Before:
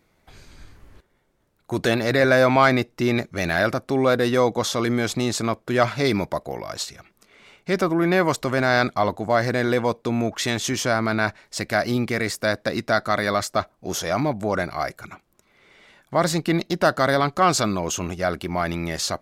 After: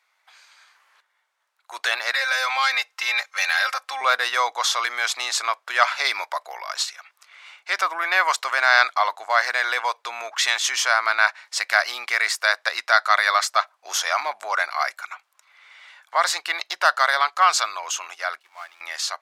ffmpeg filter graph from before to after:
ffmpeg -i in.wav -filter_complex "[0:a]asettb=1/sr,asplit=3[link_01][link_02][link_03];[link_01]atrim=end=2.124[link_04];[link_02]atrim=start=2.12:end=4.01,asetpts=PTS-STARTPTS,afade=type=in:duration=0.004:curve=qsin,afade=type=out:start_time=1.886:duration=0.004:curve=qsin,equalizer=frequency=280:width=0.69:gain=-11,aecho=1:1:3.8:0.86,atrim=end_sample=83349,acrossover=split=480|3000[link_05][link_06][link_07];[link_06]acompressor=threshold=-26dB:ratio=4:attack=3.2:release=140:knee=2.83:detection=peak[link_08];[link_05][link_08][link_07]amix=inputs=3:normalize=0[link_09];[link_03]atrim=start=4.006[link_10];[link_04][link_09]acrossfade=duration=0.004:curve1=hsin:curve2=qsin[link_11];[link_11][link_10]acrossfade=duration=0.004:curve1=qsin:curve2=hsin,asettb=1/sr,asplit=3[link_12][link_13][link_14];[link_12]atrim=end=18.414[link_15];[link_13]atrim=start=18.41:end=18.81,asetpts=PTS-STARTPTS,afade=type=in:duration=0.004:curve=qsin,afade=type=out:start_time=0.396:duration=0.004:curve=qsin,aeval=exprs='val(0)+0.5*0.0473*sgn(val(0))':channel_layout=same,agate=range=-33dB:threshold=-12dB:ratio=3:release=100:detection=peak[link_16];[link_14]atrim=start=18.806[link_17];[link_15][link_16]acrossfade=duration=0.004:curve1=hsin:curve2=qsin[link_18];[link_18][link_17]acrossfade=duration=0.004:curve1=qsin:curve2=hsin,highshelf=frequency=10000:gain=-11.5,dynaudnorm=framelen=430:gausssize=11:maxgain=11.5dB,highpass=frequency=920:width=0.5412,highpass=frequency=920:width=1.3066,volume=2dB" out.wav

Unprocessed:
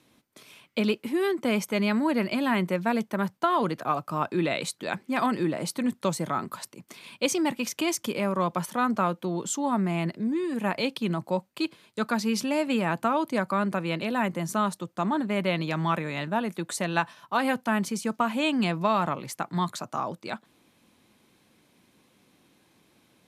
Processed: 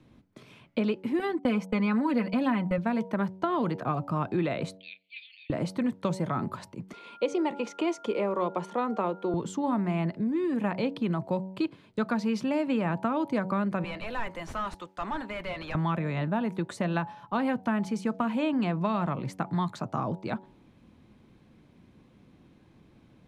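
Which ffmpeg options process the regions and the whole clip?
ffmpeg -i in.wav -filter_complex "[0:a]asettb=1/sr,asplit=3[link_01][link_02][link_03];[link_01]atrim=end=1.194[link_04];[link_02]atrim=start=1.19:end=2.78,asetpts=PTS-STARTPTS,afade=type=in:duration=0.004:curve=qsin,afade=type=out:start_time=1.586:duration=0.004:curve=qsin,agate=range=-31dB:threshold=-33dB:ratio=16:release=100:detection=peak,aecho=1:1:4:0.77,atrim=end_sample=70119[link_05];[link_03]atrim=start=2.776[link_06];[link_04][link_05]acrossfade=duration=0.004:curve1=hsin:curve2=qsin[link_07];[link_07][link_06]acrossfade=duration=0.004:curve1=qsin:curve2=hsin,asettb=1/sr,asplit=3[link_08][link_09][link_10];[link_08]atrim=end=4.774[link_11];[link_09]atrim=start=4.77:end=5.5,asetpts=PTS-STARTPTS,afade=type=in:duration=0.004:curve=qsin,afade=type=out:start_time=0.726:duration=0.004:curve=qsin,asuperpass=centerf=3200:order=12:qfactor=1.5,asplit=2[link_12][link_13];[link_13]adelay=31,volume=-13dB[link_14];[link_12][link_14]amix=inputs=2:normalize=0,atrim=end_sample=32193[link_15];[link_10]atrim=start=5.496[link_16];[link_11][link_15]acrossfade=duration=0.004:curve1=hsin:curve2=qsin[link_17];[link_17][link_16]acrossfade=duration=0.004:curve1=qsin:curve2=hsin,asettb=1/sr,asplit=3[link_18][link_19][link_20];[link_18]atrim=end=6.934[link_21];[link_19]atrim=start=6.93:end=9.34,asetpts=PTS-STARTPTS,afade=type=in:duration=0.004:curve=qsin,afade=type=out:start_time=2.406:duration=0.004:curve=qsin,aeval=exprs='val(0)+0.00794*sin(2*PI*1400*n/s)':channel_layout=same,highpass=frequency=260:width=0.5412,highpass=frequency=260:width=1.3066,equalizer=frequency=260:width_type=q:width=4:gain=-8,equalizer=frequency=450:width_type=q:width=4:gain=6,equalizer=frequency=890:width_type=q:width=4:gain=4,equalizer=frequency=1500:width_type=q:width=4:gain=-7,equalizer=frequency=5100:width_type=q:width=4:gain=-4,equalizer=frequency=8500:width_type=q:width=4:gain=-4,lowpass=frequency=9400:width=0.5412,lowpass=frequency=9400:width=1.3066[link_22];[link_20]atrim=start=9.336[link_23];[link_21][link_22]acrossfade=duration=0.004:curve1=hsin:curve2=qsin[link_24];[link_24][link_23]acrossfade=duration=0.004:curve1=qsin:curve2=hsin,asettb=1/sr,asplit=3[link_25][link_26][link_27];[link_25]atrim=end=13.844[link_28];[link_26]atrim=start=13.84:end=15.75,asetpts=PTS-STARTPTS,afade=type=in:duration=0.004:curve=qsin,afade=type=out:start_time=1.906:duration=0.004:curve=qsin,aderivative,asplit=2[link_29][link_30];[link_30]highpass=frequency=720:poles=1,volume=28dB,asoftclip=type=tanh:threshold=-18.5dB[link_31];[link_29][link_31]amix=inputs=2:normalize=0,lowpass=frequency=1300:poles=1,volume=-6dB[link_32];[link_27]atrim=start=15.746[link_33];[link_28][link_32]acrossfade=duration=0.004:curve1=hsin:curve2=qsin[link_34];[link_34][link_33]acrossfade=duration=0.004:curve1=qsin:curve2=hsin,aemphasis=mode=reproduction:type=riaa,bandreject=frequency=94.37:width_type=h:width=4,bandreject=frequency=188.74:width_type=h:width=4,bandreject=frequency=283.11:width_type=h:width=4,bandreject=frequency=377.48:width_type=h:width=4,bandreject=frequency=471.85:width_type=h:width=4,bandreject=frequency=566.22:width_type=h:width=4,bandreject=frequency=660.59:width_type=h:width=4,bandreject=frequency=754.96:width_type=h:width=4,bandreject=frequency=849.33:width_type=h:width=4,bandreject=frequency=943.7:width_type=h:width=4,acrossover=split=470|1800[link_35][link_36][link_37];[link_35]acompressor=threshold=-29dB:ratio=4[link_38];[link_36]acompressor=threshold=-30dB:ratio=4[link_39];[link_37]acompressor=threshold=-41dB:ratio=4[link_40];[link_38][link_39][link_40]amix=inputs=3:normalize=0" out.wav

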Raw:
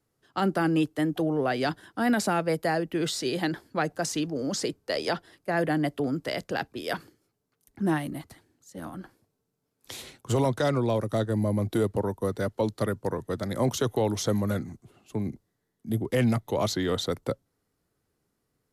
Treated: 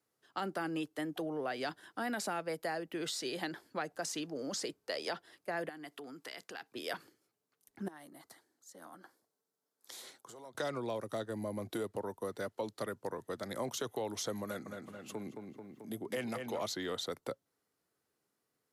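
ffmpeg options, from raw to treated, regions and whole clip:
ffmpeg -i in.wav -filter_complex "[0:a]asettb=1/sr,asplit=3[link_01][link_02][link_03];[link_01]atrim=end=5.694[link_04];[link_02]atrim=start=5.69:end=6.72,asetpts=PTS-STARTPTS,afade=type=in:duration=0.004:curve=qsin,afade=type=out:start_time=1.026:duration=0.004:curve=qsin,highpass=frequency=410:poles=1,equalizer=frequency=580:width_type=o:width=0.31:gain=-11.5,acompressor=threshold=-38dB:ratio=4:attack=3.2:release=140:knee=1:detection=peak[link_05];[link_03]atrim=start=6.716[link_06];[link_04][link_05]acrossfade=duration=0.004:curve1=hsin:curve2=qsin[link_07];[link_07][link_06]acrossfade=duration=0.004:curve1=qsin:curve2=hsin,asettb=1/sr,asplit=3[link_08][link_09][link_10];[link_08]atrim=end=7.884[link_11];[link_09]atrim=start=7.88:end=10.55,asetpts=PTS-STARTPTS,afade=type=in:duration=0.004:curve=qsin,afade=type=out:start_time=2.666:duration=0.004:curve=qsin,acompressor=threshold=-39dB:ratio=8:attack=3.2:release=140:knee=1:detection=peak,highpass=frequency=350:poles=1,equalizer=frequency=2600:width_type=o:width=0.5:gain=-10[link_12];[link_10]atrim=start=10.546[link_13];[link_11][link_12]acrossfade=duration=0.004:curve1=hsin:curve2=qsin[link_14];[link_14][link_13]acrossfade=duration=0.004:curve1=qsin:curve2=hsin,asettb=1/sr,asplit=3[link_15][link_16][link_17];[link_15]atrim=end=14.444[link_18];[link_16]atrim=start=14.44:end=16.61,asetpts=PTS-STARTPTS,afade=type=in:duration=0.004:curve=qsin,afade=type=out:start_time=2.166:duration=0.004:curve=qsin,asplit=2[link_19][link_20];[link_20]adelay=219,lowpass=frequency=3900:poles=1,volume=-7.5dB,asplit=2[link_21][link_22];[link_22]adelay=219,lowpass=frequency=3900:poles=1,volume=0.46,asplit=2[link_23][link_24];[link_24]adelay=219,lowpass=frequency=3900:poles=1,volume=0.46,asplit=2[link_25][link_26];[link_26]adelay=219,lowpass=frequency=3900:poles=1,volume=0.46,asplit=2[link_27][link_28];[link_28]adelay=219,lowpass=frequency=3900:poles=1,volume=0.46[link_29];[link_19][link_21][link_23][link_25][link_27][link_29]amix=inputs=6:normalize=0,atrim=end_sample=95697,acompressor=mode=upward:threshold=-30dB:ratio=2.5:attack=3.2:release=140:knee=2.83:detection=peak,highpass=frequency=170:poles=1[link_30];[link_17]atrim=start=16.606[link_31];[link_18][link_30]acrossfade=duration=0.004:curve1=hsin:curve2=qsin[link_32];[link_32][link_31]acrossfade=duration=0.004:curve1=qsin:curve2=hsin,highpass=frequency=450:poles=1,acompressor=threshold=-35dB:ratio=2,volume=-3dB" out.wav

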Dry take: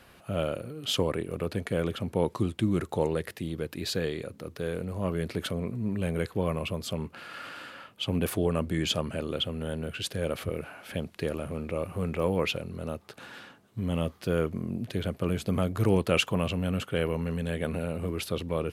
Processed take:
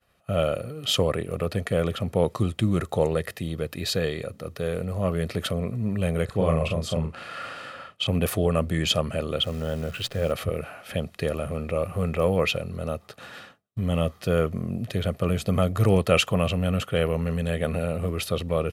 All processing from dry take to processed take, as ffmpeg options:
ffmpeg -i in.wav -filter_complex "[0:a]asettb=1/sr,asplit=3[link_01][link_02][link_03];[link_01]atrim=end=6.254[link_04];[link_02]atrim=start=6.25:end=8.07,asetpts=PTS-STARTPTS,afade=type=in:duration=0.004:curve=qsin,afade=type=out:start_time=1.816:duration=0.004:curve=qsin,lowpass=frequency=11000:width=0.5412,lowpass=frequency=11000:width=1.3066,asplit=2[link_05][link_06];[link_06]adelay=37,volume=-3.5dB[link_07];[link_05][link_07]amix=inputs=2:normalize=0,atrim=end_sample=80262,adynamicequalizer=threshold=0.00562:dfrequency=1700:dqfactor=0.7:tfrequency=1700:tqfactor=0.7:attack=5:release=100:ratio=0.375:range=2.5:mode=cutabove:tftype=highshelf[link_08];[link_03]atrim=start=8.066[link_09];[link_04][link_08]acrossfade=duration=0.004:curve1=hsin:curve2=qsin[link_10];[link_10][link_09]acrossfade=duration=0.004:curve1=qsin:curve2=hsin,asettb=1/sr,asplit=3[link_11][link_12][link_13];[link_11]atrim=end=9.434[link_14];[link_12]atrim=start=9.43:end=10.32,asetpts=PTS-STARTPTS,afade=type=in:duration=0.004:curve=qsin,afade=type=out:start_time=0.886:duration=0.004:curve=qsin,bandreject=frequency=60:width_type=h:width=6,bandreject=frequency=120:width_type=h:width=6,bandreject=frequency=180:width_type=h:width=6,adynamicsmooth=sensitivity=6:basefreq=2900,acrusher=bits=9:dc=4:mix=0:aa=0.000001[link_15];[link_13]atrim=start=10.316[link_16];[link_14][link_15]acrossfade=duration=0.004:curve1=hsin:curve2=qsin[link_17];[link_17][link_16]acrossfade=duration=0.004:curve1=qsin:curve2=hsin,agate=range=-33dB:threshold=-44dB:ratio=3:detection=peak,aecho=1:1:1.6:0.42,volume=4dB" out.wav

